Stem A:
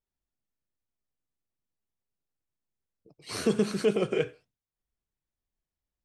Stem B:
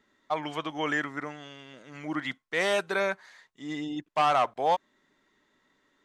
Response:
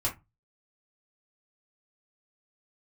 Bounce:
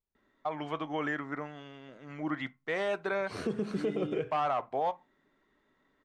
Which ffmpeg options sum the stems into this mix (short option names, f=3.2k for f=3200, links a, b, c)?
-filter_complex "[0:a]volume=-0.5dB[a];[1:a]adelay=150,volume=-1dB,asplit=2[b][c];[c]volume=-19.5dB[d];[2:a]atrim=start_sample=2205[e];[d][e]afir=irnorm=-1:irlink=0[f];[a][b][f]amix=inputs=3:normalize=0,lowpass=f=1.5k:p=1,alimiter=limit=-22.5dB:level=0:latency=1:release=153"